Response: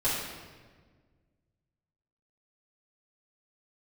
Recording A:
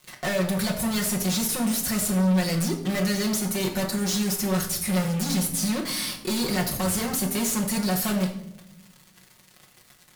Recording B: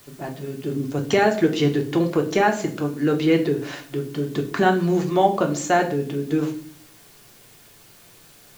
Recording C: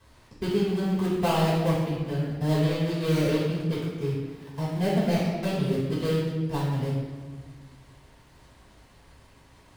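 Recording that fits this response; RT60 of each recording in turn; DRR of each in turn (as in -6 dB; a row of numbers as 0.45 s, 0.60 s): C; 0.80 s, 0.45 s, 1.5 s; -2.0 dB, 2.5 dB, -12.5 dB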